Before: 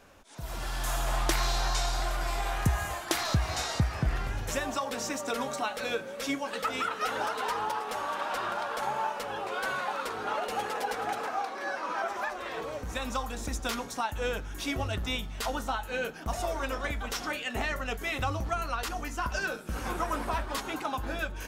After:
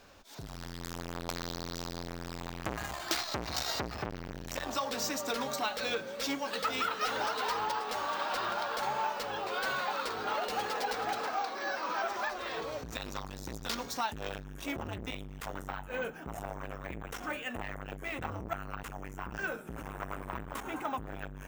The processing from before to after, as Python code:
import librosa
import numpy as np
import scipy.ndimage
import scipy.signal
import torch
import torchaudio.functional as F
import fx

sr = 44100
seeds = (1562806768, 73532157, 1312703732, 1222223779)

y = fx.peak_eq(x, sr, hz=4500.0, db=fx.steps((0.0, 7.0), (14.44, -8.5), (15.82, -14.5)), octaves=0.82)
y = np.repeat(scipy.signal.resample_poly(y, 1, 2), 2)[:len(y)]
y = fx.transformer_sat(y, sr, knee_hz=2300.0)
y = y * librosa.db_to_amplitude(-1.0)